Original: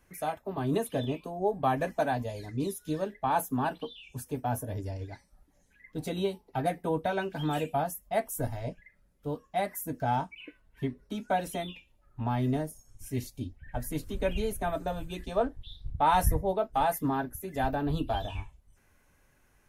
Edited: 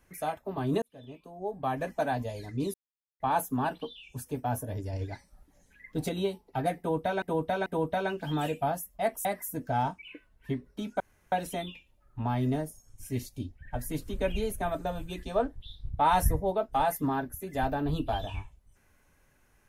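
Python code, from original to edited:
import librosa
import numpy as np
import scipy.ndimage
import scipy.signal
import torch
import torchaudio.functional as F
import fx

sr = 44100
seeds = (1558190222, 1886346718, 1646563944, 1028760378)

y = fx.edit(x, sr, fx.fade_in_span(start_s=0.82, length_s=1.38),
    fx.silence(start_s=2.74, length_s=0.46),
    fx.clip_gain(start_s=4.93, length_s=1.16, db=4.0),
    fx.repeat(start_s=6.78, length_s=0.44, count=3),
    fx.cut(start_s=8.37, length_s=1.21),
    fx.insert_room_tone(at_s=11.33, length_s=0.32), tone=tone)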